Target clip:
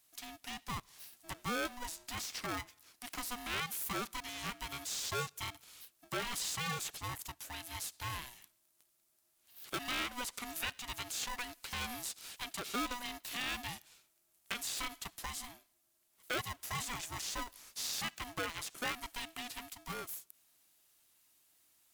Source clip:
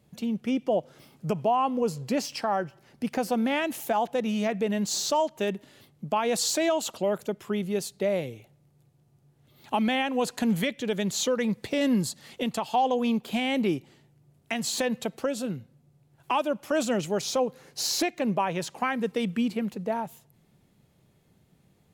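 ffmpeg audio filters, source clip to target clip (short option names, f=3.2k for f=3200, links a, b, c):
-filter_complex "[0:a]acrossover=split=2700[a][b];[b]acompressor=threshold=-45dB:ratio=4:attack=1:release=60[c];[a][c]amix=inputs=2:normalize=0,aderivative,aeval=exprs='val(0)*sgn(sin(2*PI*490*n/s))':c=same,volume=6dB"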